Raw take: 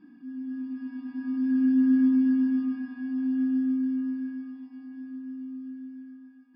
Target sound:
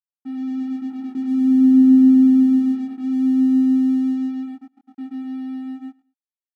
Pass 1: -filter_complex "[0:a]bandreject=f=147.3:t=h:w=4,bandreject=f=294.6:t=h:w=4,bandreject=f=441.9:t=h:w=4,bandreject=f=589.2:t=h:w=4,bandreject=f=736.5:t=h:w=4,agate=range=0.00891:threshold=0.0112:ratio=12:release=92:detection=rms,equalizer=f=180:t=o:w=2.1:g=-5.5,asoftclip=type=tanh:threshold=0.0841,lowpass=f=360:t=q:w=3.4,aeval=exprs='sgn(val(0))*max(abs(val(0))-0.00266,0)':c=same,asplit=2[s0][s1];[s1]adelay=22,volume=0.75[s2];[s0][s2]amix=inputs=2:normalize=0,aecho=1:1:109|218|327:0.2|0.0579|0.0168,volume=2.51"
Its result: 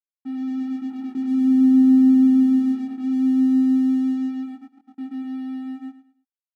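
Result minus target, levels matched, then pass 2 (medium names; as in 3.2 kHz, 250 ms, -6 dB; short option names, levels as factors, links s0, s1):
saturation: distortion +17 dB; echo-to-direct +11.5 dB
-filter_complex "[0:a]bandreject=f=147.3:t=h:w=4,bandreject=f=294.6:t=h:w=4,bandreject=f=441.9:t=h:w=4,bandreject=f=589.2:t=h:w=4,bandreject=f=736.5:t=h:w=4,agate=range=0.00891:threshold=0.0112:ratio=12:release=92:detection=rms,equalizer=f=180:t=o:w=2.1:g=-5.5,asoftclip=type=tanh:threshold=0.251,lowpass=f=360:t=q:w=3.4,aeval=exprs='sgn(val(0))*max(abs(val(0))-0.00266,0)':c=same,asplit=2[s0][s1];[s1]adelay=22,volume=0.75[s2];[s0][s2]amix=inputs=2:normalize=0,aecho=1:1:109|218:0.0531|0.0154,volume=2.51"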